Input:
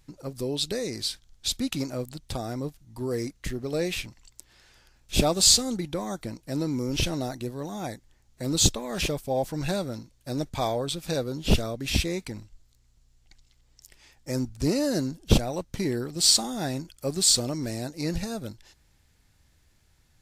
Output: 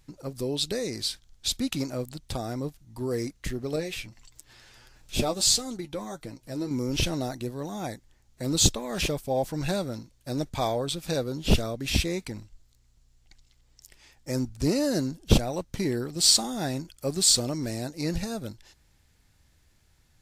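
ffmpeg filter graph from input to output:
ffmpeg -i in.wav -filter_complex "[0:a]asettb=1/sr,asplit=3[link_01][link_02][link_03];[link_01]atrim=end=3.764[link_04];[link_02]atrim=start=3.76:end=6.71,asetpts=PTS-STARTPTS,afade=type=in:duration=0.004:curve=qsin,afade=type=out:start_time=2.946:duration=0.004:curve=qsin,acompressor=mode=upward:threshold=-39dB:ratio=2.5:attack=3.2:release=140:knee=2.83:detection=peak,flanger=delay=6.2:depth=3.5:regen=37:speed=1.6:shape=triangular[link_05];[link_03]atrim=start=6.706[link_06];[link_04][link_05]acrossfade=duration=0.004:curve1=hsin:curve2=qsin[link_07];[link_07][link_06]acrossfade=duration=0.004:curve1=qsin:curve2=hsin" out.wav

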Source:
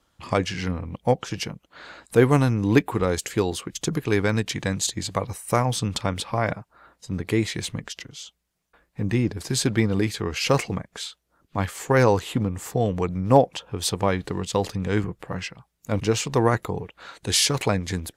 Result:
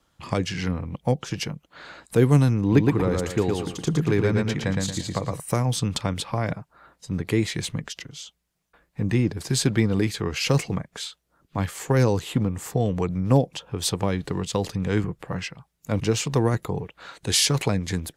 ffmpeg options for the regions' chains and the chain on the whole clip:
ffmpeg -i in.wav -filter_complex "[0:a]asettb=1/sr,asplit=3[link_01][link_02][link_03];[link_01]atrim=end=2.614[link_04];[link_02]atrim=start=2.61:end=5.4,asetpts=PTS-STARTPTS,afade=type=in:duration=0.004:curve=qsin,afade=type=out:start_time=2.786:duration=0.004:curve=qsin,highshelf=frequency=3600:gain=-9.5,aecho=1:1:114|228|342|456:0.668|0.214|0.0684|0.0219,atrim=end_sample=123039[link_05];[link_03]atrim=start=5.396[link_06];[link_04][link_05]acrossfade=duration=0.004:curve1=hsin:curve2=qsin[link_07];[link_07][link_06]acrossfade=duration=0.004:curve1=qsin:curve2=hsin,equalizer=frequency=150:width=3.7:gain=5,acrossover=split=430|3000[link_08][link_09][link_10];[link_09]acompressor=threshold=-27dB:ratio=6[link_11];[link_08][link_11][link_10]amix=inputs=3:normalize=0" out.wav

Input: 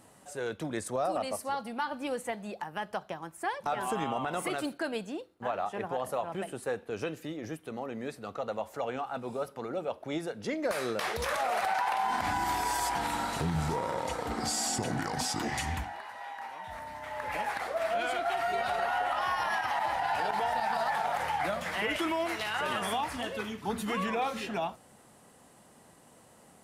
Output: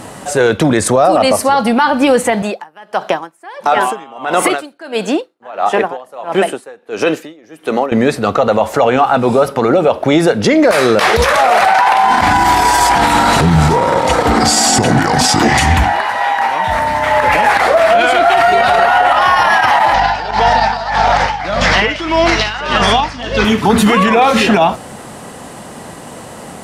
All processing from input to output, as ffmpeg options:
ffmpeg -i in.wav -filter_complex "[0:a]asettb=1/sr,asplit=3[link_01][link_02][link_03];[link_01]atrim=end=2.424[link_04];[link_02]atrim=start=2.42:end=7.92,asetpts=PTS-STARTPTS,afade=type=in:duration=0.004:curve=qsin,afade=type=out:start_time=5.496:duration=0.004:curve=qsin,highpass=280,aeval=exprs='val(0)*pow(10,-29*(0.5-0.5*cos(2*PI*1.5*n/s))/20)':channel_layout=same[link_05];[link_03]atrim=start=7.916[link_06];[link_04][link_05]acrossfade=duration=0.004:curve1=hsin:curve2=qsin[link_07];[link_07][link_06]acrossfade=duration=0.004:curve1=qsin:curve2=hsin,asettb=1/sr,asplit=3[link_08][link_09][link_10];[link_08]atrim=end=19.944[link_11];[link_09]atrim=start=19.94:end=23.45,asetpts=PTS-STARTPTS,afade=type=in:duration=0.004:curve=qsin,afade=type=out:start_time=3.506:duration=0.004:curve=qsin,aeval=exprs='val(0)+0.00794*(sin(2*PI*50*n/s)+sin(2*PI*2*50*n/s)/2+sin(2*PI*3*50*n/s)/3+sin(2*PI*4*50*n/s)/4+sin(2*PI*5*50*n/s)/5)':channel_layout=same,lowpass=frequency=5400:width_type=q:width=2.5,aeval=exprs='val(0)*pow(10,-19*(0.5-0.5*cos(2*PI*1.7*n/s))/20)':channel_layout=same[link_12];[link_10]atrim=start=23.446[link_13];[link_11][link_12]acrossfade=duration=0.004:curve1=hsin:curve2=qsin[link_14];[link_14][link_13]acrossfade=duration=0.004:curve1=qsin:curve2=hsin,highshelf=frequency=10000:gain=-10,alimiter=level_in=28.5dB:limit=-1dB:release=50:level=0:latency=1,volume=-1dB" out.wav

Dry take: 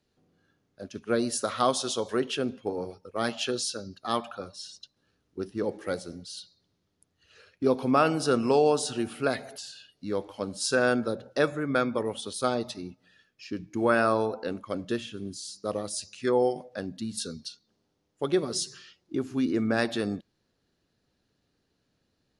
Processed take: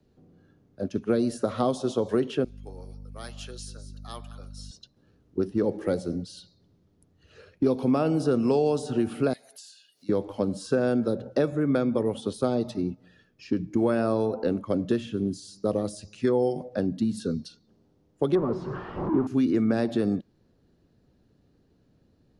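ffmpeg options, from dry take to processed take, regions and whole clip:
ffmpeg -i in.wav -filter_complex "[0:a]asettb=1/sr,asplit=3[link_01][link_02][link_03];[link_01]atrim=end=2.444[link_04];[link_02]atrim=start=2.44:end=4.71,asetpts=PTS-STARTPTS,afade=type=in:duration=0.004:curve=qsin,afade=type=out:start_time=2.266:duration=0.004:curve=qsin,aderivative,aeval=exprs='val(0)+0.00224*(sin(2*PI*50*n/s)+sin(2*PI*2*50*n/s)/2+sin(2*PI*3*50*n/s)/3+sin(2*PI*4*50*n/s)/4+sin(2*PI*5*50*n/s)/5)':channel_layout=same,aecho=1:1:193:0.126,atrim=end_sample=100107[link_05];[link_03]atrim=start=4.706[link_06];[link_04][link_05]acrossfade=duration=0.004:curve1=hsin:curve2=qsin[link_07];[link_07][link_06]acrossfade=duration=0.004:curve1=qsin:curve2=hsin,asettb=1/sr,asplit=3[link_08][link_09][link_10];[link_08]atrim=end=9.334[link_11];[link_09]atrim=start=9.33:end=10.09,asetpts=PTS-STARTPTS,afade=type=in:duration=0.004:curve=qsin,afade=type=out:start_time=0.756:duration=0.004:curve=qsin,aderivative,acompressor=mode=upward:threshold=-51dB:ratio=2.5:attack=3.2:release=140:knee=2.83:detection=peak[link_12];[link_10]atrim=start=10.086[link_13];[link_11][link_12]acrossfade=duration=0.004:curve1=hsin:curve2=qsin[link_14];[link_14][link_13]acrossfade=duration=0.004:curve1=qsin:curve2=hsin,asettb=1/sr,asplit=3[link_15][link_16][link_17];[link_15]atrim=end=18.354[link_18];[link_16]atrim=start=18.35:end=19.27,asetpts=PTS-STARTPTS,afade=type=in:duration=0.004:curve=qsin,afade=type=out:start_time=0.916:duration=0.004:curve=qsin,aeval=exprs='val(0)+0.5*0.0237*sgn(val(0))':channel_layout=same,lowpass=frequency=1100:width_type=q:width=3.1[link_19];[link_17]atrim=start=19.266[link_20];[link_18][link_19]acrossfade=duration=0.004:curve1=hsin:curve2=qsin[link_21];[link_21][link_20]acrossfade=duration=0.004:curve1=qsin:curve2=hsin,tiltshelf=frequency=820:gain=8,acrossover=split=150|950|2400[link_22][link_23][link_24][link_25];[link_22]acompressor=threshold=-44dB:ratio=4[link_26];[link_23]acompressor=threshold=-28dB:ratio=4[link_27];[link_24]acompressor=threshold=-48dB:ratio=4[link_28];[link_25]acompressor=threshold=-49dB:ratio=4[link_29];[link_26][link_27][link_28][link_29]amix=inputs=4:normalize=0,volume=5.5dB" out.wav

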